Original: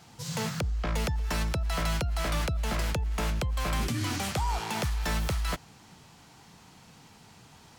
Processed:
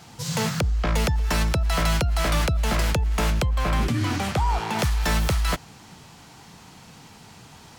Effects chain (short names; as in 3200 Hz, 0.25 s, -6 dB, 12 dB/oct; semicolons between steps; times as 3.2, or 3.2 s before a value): 3.49–4.79 high shelf 3800 Hz -10 dB; gain +7 dB